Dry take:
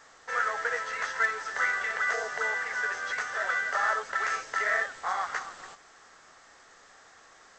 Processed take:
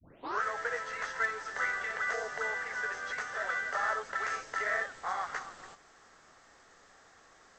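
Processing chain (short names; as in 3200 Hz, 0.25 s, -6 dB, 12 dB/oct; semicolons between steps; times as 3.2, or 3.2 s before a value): tape start at the beginning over 0.43 s; low shelf 460 Hz +7 dB; gain -5.5 dB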